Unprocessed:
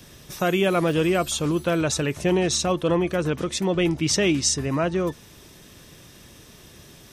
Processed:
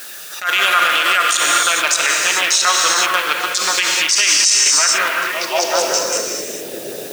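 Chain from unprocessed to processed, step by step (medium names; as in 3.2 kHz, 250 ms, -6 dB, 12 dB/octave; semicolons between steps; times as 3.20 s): local Wiener filter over 41 samples; treble shelf 7.5 kHz -5.5 dB; level held to a coarse grid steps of 13 dB; repeats whose band climbs or falls 186 ms, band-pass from 170 Hz, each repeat 0.7 oct, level -5.5 dB; LFO notch saw down 6.8 Hz 890–3700 Hz; compression 4:1, threshold -36 dBFS, peak gain reduction 11.5 dB; high-pass sweep 1.3 kHz -> 490 Hz, 5.30–5.90 s; gated-style reverb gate 460 ms flat, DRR 1.5 dB; word length cut 12-bit, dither triangular; tilt shelf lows -7.5 dB, about 1.4 kHz; loudness maximiser +34 dB; attacks held to a fixed rise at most 170 dB/s; trim -2.5 dB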